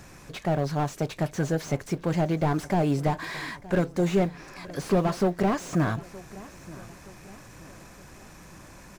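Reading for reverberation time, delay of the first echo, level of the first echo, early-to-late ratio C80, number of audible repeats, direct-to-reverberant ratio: none, 0.92 s, -19.5 dB, none, 3, none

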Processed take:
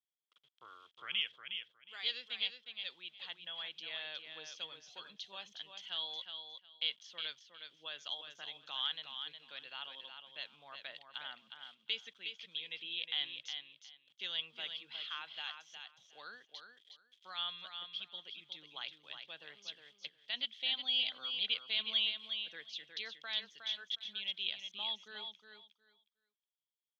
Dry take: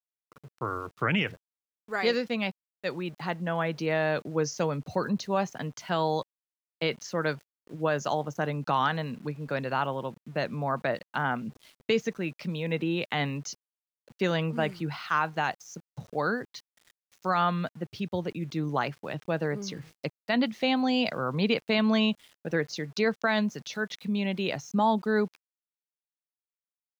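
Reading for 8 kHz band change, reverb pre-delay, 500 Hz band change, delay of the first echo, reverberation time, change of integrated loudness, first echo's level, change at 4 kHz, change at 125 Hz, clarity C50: n/a, none, -29.0 dB, 0.362 s, none, -10.0 dB, -7.0 dB, +2.0 dB, under -35 dB, none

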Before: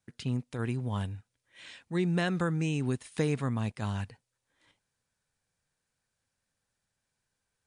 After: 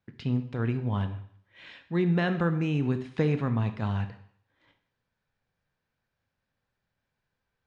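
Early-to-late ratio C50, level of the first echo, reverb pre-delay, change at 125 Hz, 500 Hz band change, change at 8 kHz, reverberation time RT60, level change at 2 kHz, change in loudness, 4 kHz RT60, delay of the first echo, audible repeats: 11.5 dB, none, 21 ms, +4.0 dB, +3.5 dB, under -10 dB, 0.60 s, +2.0 dB, +3.5 dB, 0.60 s, none, none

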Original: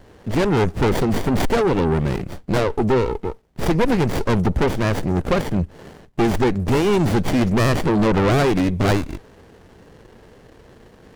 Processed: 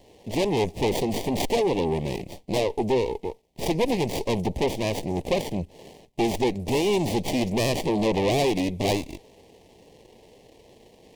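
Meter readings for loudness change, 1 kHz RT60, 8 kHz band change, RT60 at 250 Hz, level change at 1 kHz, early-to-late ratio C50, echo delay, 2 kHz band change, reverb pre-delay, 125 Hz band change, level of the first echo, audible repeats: -5.5 dB, none, 0.0 dB, none, -5.5 dB, none, none, -7.5 dB, none, -10.0 dB, none, none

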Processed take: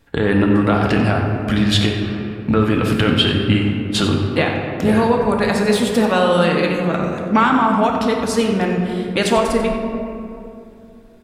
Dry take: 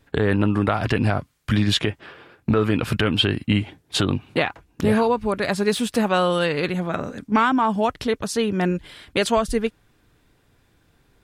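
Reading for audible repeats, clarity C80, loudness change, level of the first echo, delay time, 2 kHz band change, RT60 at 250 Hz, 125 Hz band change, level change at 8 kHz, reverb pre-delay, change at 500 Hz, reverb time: 1, 3.5 dB, +5.0 dB, -12.0 dB, 92 ms, +4.5 dB, 3.3 s, +4.5 dB, +3.5 dB, 4 ms, +5.0 dB, 2.8 s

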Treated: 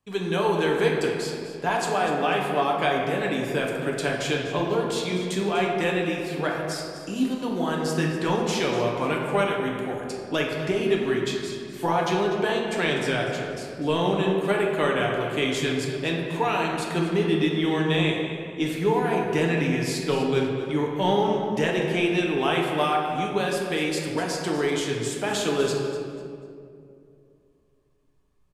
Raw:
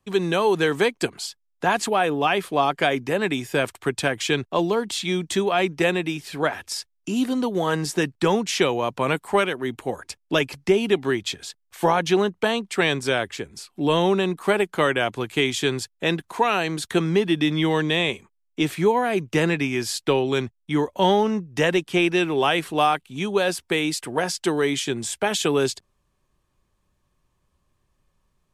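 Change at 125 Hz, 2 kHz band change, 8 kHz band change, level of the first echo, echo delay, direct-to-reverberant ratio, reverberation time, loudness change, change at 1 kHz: 0.0 dB, -3.0 dB, -4.5 dB, -13.5 dB, 0.246 s, -1.5 dB, 2.5 s, -2.0 dB, -2.0 dB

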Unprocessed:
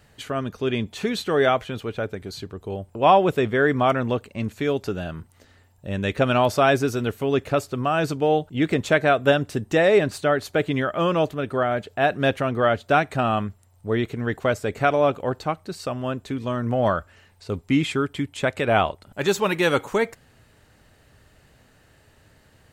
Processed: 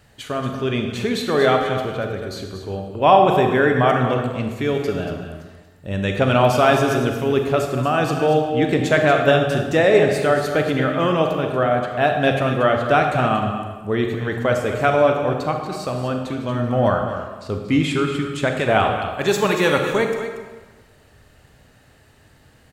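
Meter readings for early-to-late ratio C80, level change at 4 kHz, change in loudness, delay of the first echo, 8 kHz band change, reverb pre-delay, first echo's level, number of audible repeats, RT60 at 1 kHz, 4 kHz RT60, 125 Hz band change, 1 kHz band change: 5.0 dB, +3.5 dB, +3.5 dB, 0.233 s, +3.0 dB, 31 ms, -10.5 dB, 1, 1.3 s, 1.0 s, +4.5 dB, +4.0 dB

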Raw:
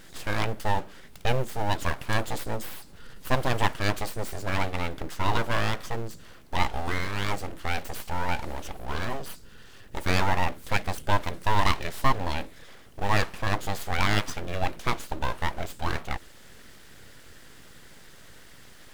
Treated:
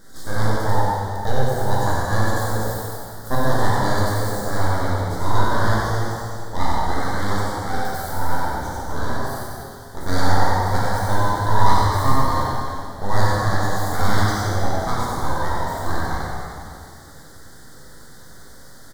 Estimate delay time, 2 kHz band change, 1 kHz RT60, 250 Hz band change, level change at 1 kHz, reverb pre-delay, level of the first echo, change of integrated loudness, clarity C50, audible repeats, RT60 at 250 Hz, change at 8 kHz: 93 ms, +3.5 dB, 2.4 s, +8.0 dB, +8.0 dB, 6 ms, -3.5 dB, +7.0 dB, -5.0 dB, 1, 2.4 s, +7.5 dB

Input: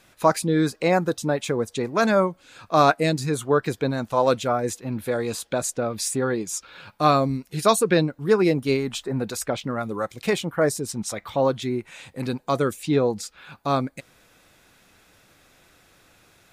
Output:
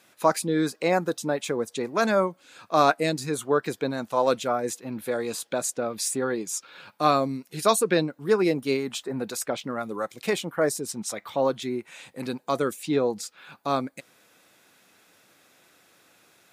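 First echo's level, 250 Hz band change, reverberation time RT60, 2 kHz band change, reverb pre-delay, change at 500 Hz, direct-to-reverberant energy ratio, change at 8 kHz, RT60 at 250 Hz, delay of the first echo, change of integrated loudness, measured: none, -3.5 dB, none, -2.5 dB, none, -2.5 dB, none, -1.0 dB, none, none, -3.0 dB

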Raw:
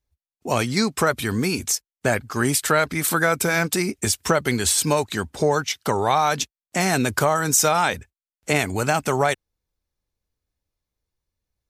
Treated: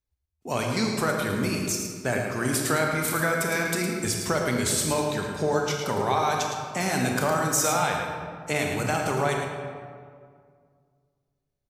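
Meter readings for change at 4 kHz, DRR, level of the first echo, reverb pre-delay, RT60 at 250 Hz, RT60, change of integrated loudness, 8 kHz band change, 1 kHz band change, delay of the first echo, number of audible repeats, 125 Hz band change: -5.0 dB, 0.5 dB, -7.5 dB, 27 ms, 2.4 s, 2.0 s, -4.5 dB, -5.0 dB, -4.0 dB, 0.11 s, 1, -3.0 dB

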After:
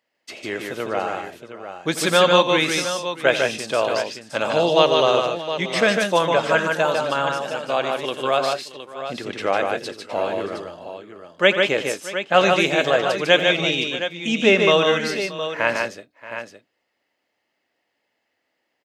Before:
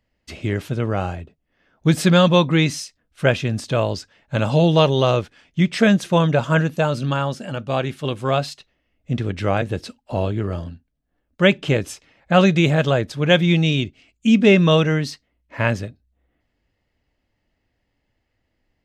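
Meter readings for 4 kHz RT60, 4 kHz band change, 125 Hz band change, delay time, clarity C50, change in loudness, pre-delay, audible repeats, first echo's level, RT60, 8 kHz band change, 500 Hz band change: none, +3.5 dB, -14.5 dB, 85 ms, none, -1.0 dB, none, 4, -14.0 dB, none, +3.5 dB, +1.5 dB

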